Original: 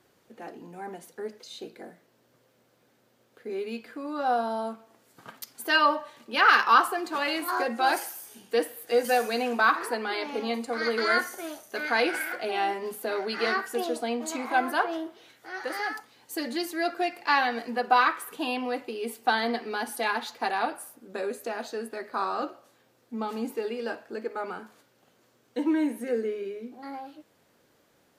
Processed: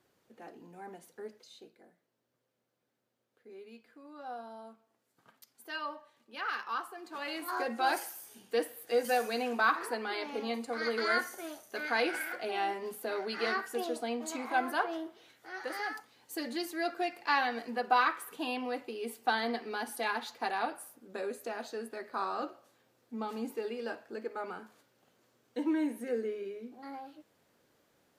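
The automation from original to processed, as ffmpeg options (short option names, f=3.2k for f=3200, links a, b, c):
-af "volume=3.5dB,afade=t=out:st=1.24:d=0.53:silence=0.354813,afade=t=in:st=6.95:d=0.77:silence=0.266073"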